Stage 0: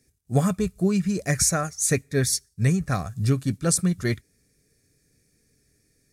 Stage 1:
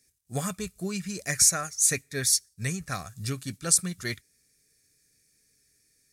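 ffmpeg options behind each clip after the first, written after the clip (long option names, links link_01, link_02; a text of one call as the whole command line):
ffmpeg -i in.wav -af "tiltshelf=frequency=1200:gain=-7,volume=-4.5dB" out.wav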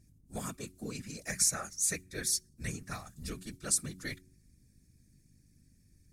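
ffmpeg -i in.wav -af "aeval=exprs='val(0)+0.00224*(sin(2*PI*50*n/s)+sin(2*PI*2*50*n/s)/2+sin(2*PI*3*50*n/s)/3+sin(2*PI*4*50*n/s)/4+sin(2*PI*5*50*n/s)/5)':channel_layout=same,afftfilt=real='hypot(re,im)*cos(2*PI*random(0))':imag='hypot(re,im)*sin(2*PI*random(1))':win_size=512:overlap=0.75,bandreject=frequency=92.22:width_type=h:width=4,bandreject=frequency=184.44:width_type=h:width=4,bandreject=frequency=276.66:width_type=h:width=4,bandreject=frequency=368.88:width_type=h:width=4,volume=-2dB" out.wav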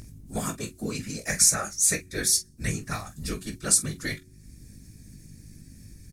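ffmpeg -i in.wav -filter_complex "[0:a]acompressor=mode=upward:threshold=-45dB:ratio=2.5,asplit=2[link_01][link_02];[link_02]aecho=0:1:19|45:0.398|0.211[link_03];[link_01][link_03]amix=inputs=2:normalize=0,volume=8dB" out.wav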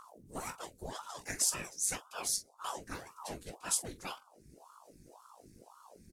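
ffmpeg -i in.wav -af "aeval=exprs='val(0)*sin(2*PI*640*n/s+640*0.85/1.9*sin(2*PI*1.9*n/s))':channel_layout=same,volume=-8.5dB" out.wav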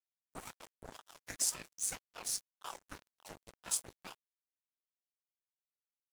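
ffmpeg -i in.wav -af "aeval=exprs='sgn(val(0))*max(abs(val(0))-0.00944,0)':channel_layout=same,volume=-1dB" out.wav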